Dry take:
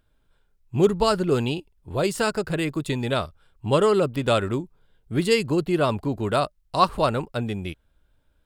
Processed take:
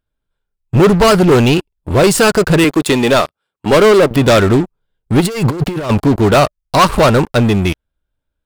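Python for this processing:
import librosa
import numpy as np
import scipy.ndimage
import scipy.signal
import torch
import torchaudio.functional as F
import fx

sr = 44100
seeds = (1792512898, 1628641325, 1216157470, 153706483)

y = fx.highpass(x, sr, hz=240.0, slope=12, at=(2.64, 4.11))
y = fx.leveller(y, sr, passes=5)
y = fx.over_compress(y, sr, threshold_db=-14.0, ratio=-0.5, at=(5.2, 5.89), fade=0.02)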